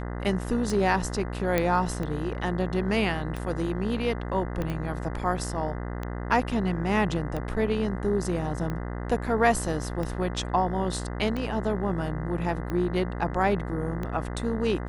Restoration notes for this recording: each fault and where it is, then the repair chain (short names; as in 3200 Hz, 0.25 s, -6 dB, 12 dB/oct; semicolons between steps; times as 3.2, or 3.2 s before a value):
buzz 60 Hz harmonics 34 -33 dBFS
tick 45 rpm
1.58 pop -10 dBFS
4.62 pop -18 dBFS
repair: de-click; de-hum 60 Hz, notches 34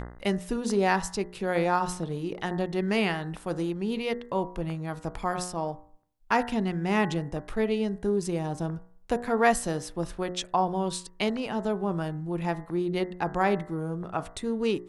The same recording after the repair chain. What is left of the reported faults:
4.62 pop